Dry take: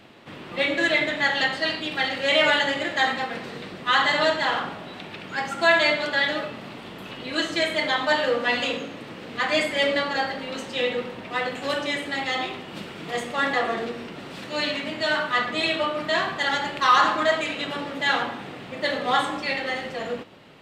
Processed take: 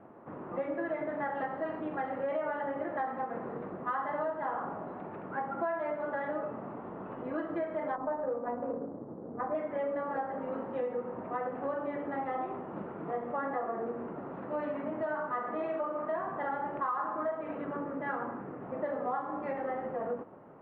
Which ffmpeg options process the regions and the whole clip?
-filter_complex "[0:a]asettb=1/sr,asplit=3[a][b][c];[a]atrim=end=7.954[d];[b]atrim=start=7.95:end=9.55,asetpts=PTS-STARTPTS,afade=t=in:d=0.004:c=qsin,afade=t=out:st=1.596:d=0.004:c=qsin,lowpass=f=1.1k:p=1,adynamicsmooth=sensitivity=1.5:basefreq=540[e];[c]atrim=start=9.546[f];[d][e]acrossfade=d=0.004:c1=hsin:c2=qsin[g];[g][f]acrossfade=d=0.004:c1=qsin:c2=hsin,asettb=1/sr,asplit=3[h][i][j];[h]atrim=end=15.394[k];[i]atrim=start=15.39:end=16.16,asetpts=PTS-STARTPTS,afade=t=in:d=0.004:c=qsin,afade=t=out:st=0.766:d=0.004:c=qsin,highpass=f=220:p=1,asplit=2[l][m];[m]adelay=44,volume=-6dB[n];[l][n]amix=inputs=2:normalize=0,atrim=end_sample=33957[o];[j]atrim=start=16.156[p];[k][o]acrossfade=d=0.004:c1=hsin:c2=qsin[q];[q][p]acrossfade=d=0.004:c1=qsin:c2=hsin,asettb=1/sr,asplit=3[r][s][t];[r]atrim=end=17.584[u];[s]atrim=start=17.58:end=18.62,asetpts=PTS-STARTPTS,afade=t=in:d=0.004:c=qsin,afade=t=out:st=1.036:d=0.004:c=qsin,lowpass=2.9k,equalizer=f=770:t=o:w=0.87:g=-7[v];[t]atrim=start=18.616[w];[u][v]acrossfade=d=0.004:c1=hsin:c2=qsin[x];[x][w]acrossfade=d=0.004:c1=qsin:c2=hsin,lowpass=f=1.2k:w=0.5412,lowpass=f=1.2k:w=1.3066,lowshelf=f=170:g=-9,acompressor=threshold=-31dB:ratio=6"

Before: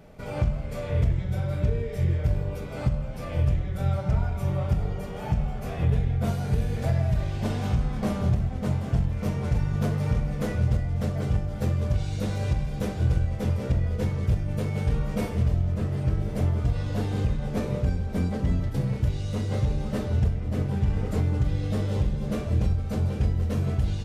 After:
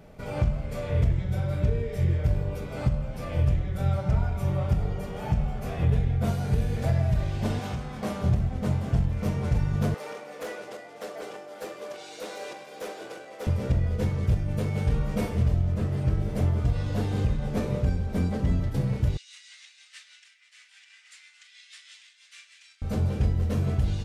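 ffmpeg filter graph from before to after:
-filter_complex "[0:a]asettb=1/sr,asplit=3[a][b][c];[a]atrim=end=7.594[d];[b]atrim=start=7.59:end=8.24,asetpts=PTS-STARTPTS,afade=t=in:d=0.004:c=qsin,afade=t=out:st=0.646:d=0.004:c=qsin,highpass=51,lowshelf=f=220:g=-10[e];[c]atrim=start=8.236[f];[d][e]acrossfade=d=0.004:c1=hsin:c2=qsin[g];[g][f]acrossfade=d=0.004:c1=qsin:c2=hsin,asettb=1/sr,asplit=3[h][i][j];[h]atrim=end=9.944[k];[i]atrim=start=9.94:end=13.47,asetpts=PTS-STARTPTS,afade=t=in:d=0.004:c=qsin,afade=t=out:st=3.526:d=0.004:c=qsin,highpass=f=370:w=0.5412,highpass=f=370:w=1.3066,volume=30.5dB,asoftclip=hard,volume=-30.5dB[l];[j]atrim=start=13.466[m];[k][l]acrossfade=d=0.004:c1=hsin:c2=qsin[n];[n][m]acrossfade=d=0.004:c1=qsin:c2=hsin,asettb=1/sr,asplit=3[o][p][q];[o]atrim=end=19.174[r];[p]atrim=start=19.17:end=22.82,asetpts=PTS-STARTPTS,afade=t=in:d=0.004:c=qsin,afade=t=out:st=3.646:d=0.004:c=qsin,asuperpass=centerf=4400:order=8:qfactor=0.6,tremolo=f=6.2:d=0.45[s];[q]atrim=start=22.816[t];[r][s]acrossfade=d=0.004:c1=hsin:c2=qsin[u];[u][t]acrossfade=d=0.004:c1=qsin:c2=hsin"

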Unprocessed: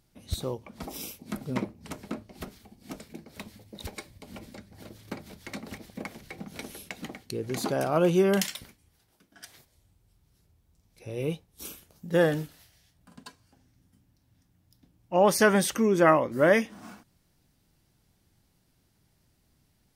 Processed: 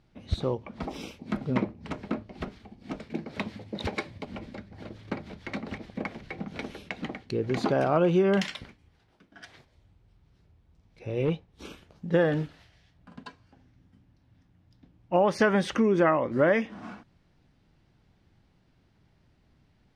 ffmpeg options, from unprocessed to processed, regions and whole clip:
-filter_complex "[0:a]asettb=1/sr,asplit=3[a][b][c];[a]atrim=end=3.104[d];[b]atrim=start=3.1:end=4.25,asetpts=PTS-STARTPTS,afade=t=in:d=0.004:c=qsin,afade=t=out:st=1.146:d=0.004:c=qsin,highpass=100,acontrast=47[e];[c]atrim=start=4.246[f];[d][e]acrossfade=d=0.004:c1=hsin:c2=qsin[g];[g][f]acrossfade=d=0.004:c1=qsin:c2=hsin,asettb=1/sr,asplit=3[h][i][j];[h]atrim=end=11.254[k];[i]atrim=start=11.25:end=11.7,asetpts=PTS-STARTPTS,afade=t=in:d=0.004:c=qsin,afade=t=out:st=0.446:d=0.004:c=qsin,highshelf=f=8.1k:g=-6,asoftclip=type=hard:threshold=-24dB[l];[j]atrim=start=11.696[m];[k][l]acrossfade=d=0.004:c1=hsin:c2=qsin[n];[n][m]acrossfade=d=0.004:c1=qsin:c2=hsin,lowpass=3.1k,acompressor=threshold=-24dB:ratio=4,volume=4.5dB"

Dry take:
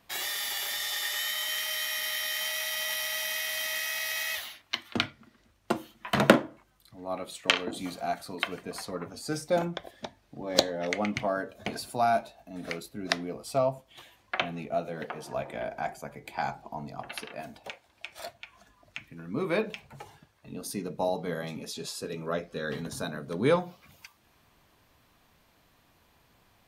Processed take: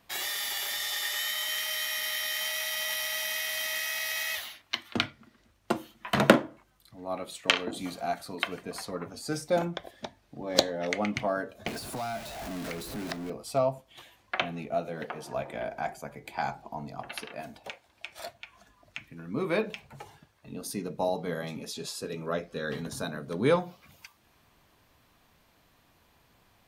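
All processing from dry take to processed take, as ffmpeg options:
-filter_complex "[0:a]asettb=1/sr,asplit=3[a][b][c];[a]atrim=end=11.674[d];[b]atrim=start=11.67:end=13.3,asetpts=PTS-STARTPTS,afade=t=in:d=0.004:c=qsin,afade=t=out:st=1.626:d=0.004:c=qsin,aeval=exprs='val(0)+0.5*0.0299*sgn(val(0))':c=same,acrossover=split=180|1500[e][f][g];[e]acompressor=threshold=-43dB:ratio=4[h];[f]acompressor=threshold=-37dB:ratio=4[i];[g]acompressor=threshold=-41dB:ratio=4[j];[h][i][j]amix=inputs=3:normalize=0[k];[c]atrim=start=13.296[l];[d][k]acrossfade=d=0.004:c1=hsin:c2=qsin[m];[m][l]acrossfade=d=0.004:c1=qsin:c2=hsin"

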